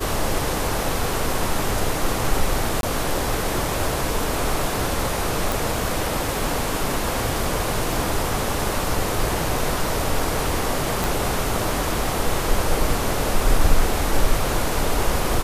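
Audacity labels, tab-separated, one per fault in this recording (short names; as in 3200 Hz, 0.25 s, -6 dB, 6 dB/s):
2.810000	2.830000	gap 22 ms
5.520000	5.520000	pop
7.930000	7.930000	pop
11.040000	11.040000	pop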